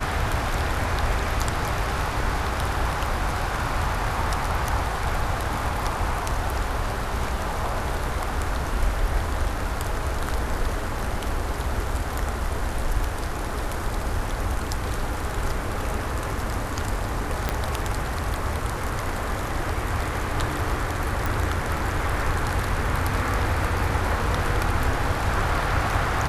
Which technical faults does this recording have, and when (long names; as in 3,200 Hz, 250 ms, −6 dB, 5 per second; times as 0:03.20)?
0:17.49: click −9 dBFS
0:21.26: click